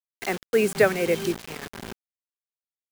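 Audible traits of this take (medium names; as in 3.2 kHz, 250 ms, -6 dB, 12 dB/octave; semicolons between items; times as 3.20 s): tremolo triangle 1.8 Hz, depth 65%; a quantiser's noise floor 6-bit, dither none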